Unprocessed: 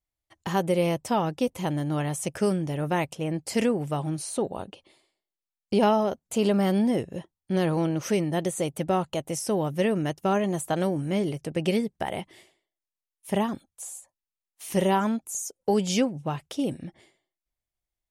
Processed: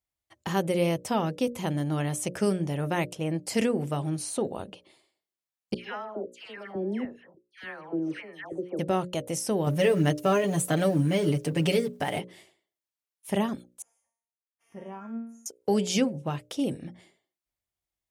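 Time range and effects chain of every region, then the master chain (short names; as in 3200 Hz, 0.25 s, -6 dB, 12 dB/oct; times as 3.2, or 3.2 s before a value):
5.74–8.79 LFO band-pass square 1.7 Hz 350–1800 Hz + dispersion lows, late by 0.135 s, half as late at 1500 Hz
9.66–12.19 G.711 law mismatch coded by mu + comb 6.9 ms, depth 95%
13.82–15.46 running mean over 11 samples + resonator 230 Hz, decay 0.62 s, mix 90%
whole clip: notches 60/120/180/240/300/360/420/480/540/600 Hz; dynamic EQ 880 Hz, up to -4 dB, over -37 dBFS, Q 1.7; HPF 54 Hz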